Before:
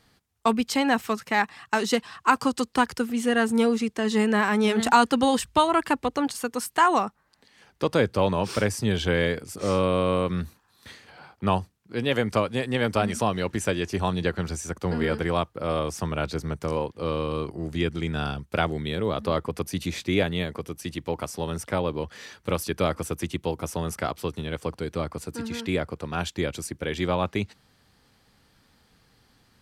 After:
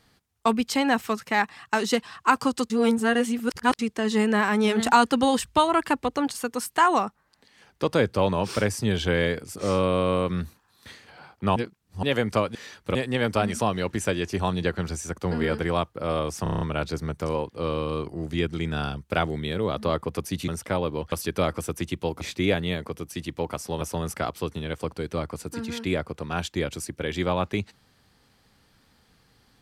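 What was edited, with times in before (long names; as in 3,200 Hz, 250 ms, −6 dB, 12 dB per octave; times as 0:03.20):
0:02.70–0:03.79: reverse
0:11.56–0:12.03: reverse
0:16.03: stutter 0.03 s, 7 plays
0:19.90–0:21.50: move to 0:23.63
0:22.14–0:22.54: move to 0:12.55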